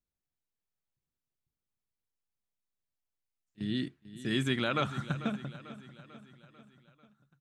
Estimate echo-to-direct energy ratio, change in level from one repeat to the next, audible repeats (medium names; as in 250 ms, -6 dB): -13.5 dB, -5.0 dB, 4